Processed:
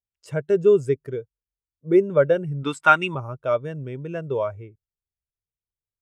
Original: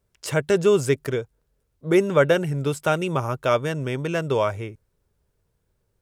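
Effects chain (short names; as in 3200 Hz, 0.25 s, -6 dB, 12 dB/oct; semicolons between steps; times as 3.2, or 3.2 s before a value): 2.63–3.15 graphic EQ 125/250/500/1000/2000/4000/8000 Hz -7/+8/-7/+11/+10/+8/+7 dB; spectral expander 1.5:1; gain -2.5 dB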